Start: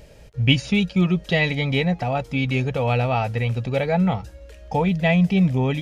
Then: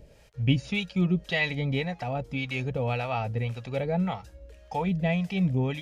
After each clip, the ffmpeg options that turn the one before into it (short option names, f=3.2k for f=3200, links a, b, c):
-filter_complex "[0:a]acrossover=split=630[a][b];[a]aeval=exprs='val(0)*(1-0.7/2+0.7/2*cos(2*PI*1.8*n/s))':c=same[c];[b]aeval=exprs='val(0)*(1-0.7/2-0.7/2*cos(2*PI*1.8*n/s))':c=same[d];[c][d]amix=inputs=2:normalize=0,volume=-4dB"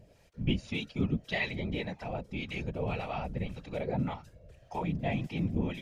-af "afftfilt=real='hypot(re,im)*cos(2*PI*random(0))':imag='hypot(re,im)*sin(2*PI*random(1))':win_size=512:overlap=0.75"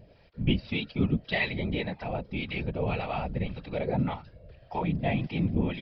-af "aresample=11025,aresample=44100,volume=4dB"